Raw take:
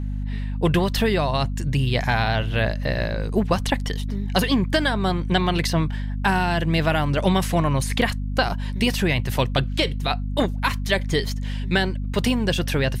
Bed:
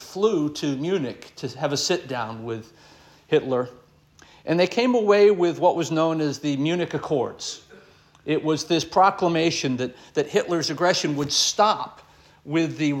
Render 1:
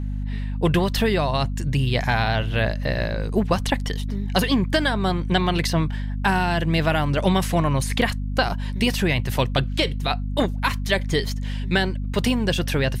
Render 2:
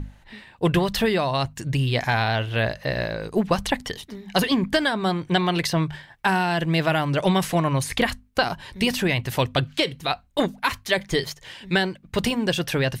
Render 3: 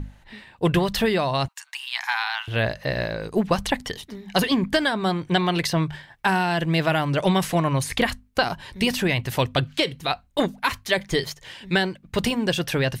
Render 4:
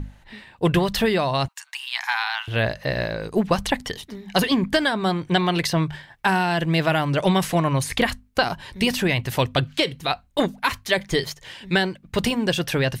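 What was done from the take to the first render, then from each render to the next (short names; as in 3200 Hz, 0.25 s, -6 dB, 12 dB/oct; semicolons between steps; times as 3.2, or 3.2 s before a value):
nothing audible
notches 50/100/150/200/250 Hz
1.48–2.48 steep high-pass 830 Hz 72 dB/oct
gain +1 dB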